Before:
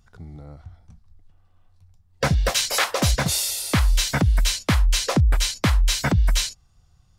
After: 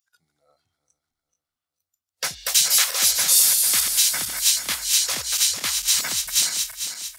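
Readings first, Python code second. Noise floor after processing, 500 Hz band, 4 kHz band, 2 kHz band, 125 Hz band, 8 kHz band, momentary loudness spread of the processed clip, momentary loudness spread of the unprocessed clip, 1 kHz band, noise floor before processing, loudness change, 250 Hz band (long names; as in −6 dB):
below −85 dBFS, −13.0 dB, +4.5 dB, −2.0 dB, below −25 dB, +9.0 dB, 10 LU, 3 LU, −7.5 dB, −59 dBFS, +3.5 dB, below −20 dB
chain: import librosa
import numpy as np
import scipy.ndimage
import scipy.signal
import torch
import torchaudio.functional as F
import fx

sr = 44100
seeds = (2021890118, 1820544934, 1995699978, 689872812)

y = fx.reverse_delay_fb(x, sr, ms=224, feedback_pct=64, wet_db=-5.5)
y = fx.noise_reduce_blind(y, sr, reduce_db=15)
y = np.diff(y, prepend=0.0)
y = y * librosa.db_to_amplitude(7.5)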